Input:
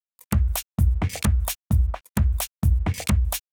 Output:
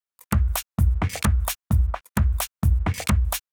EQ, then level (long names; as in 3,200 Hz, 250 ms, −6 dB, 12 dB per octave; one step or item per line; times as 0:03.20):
parametric band 1,300 Hz +6 dB 1.2 octaves
0.0 dB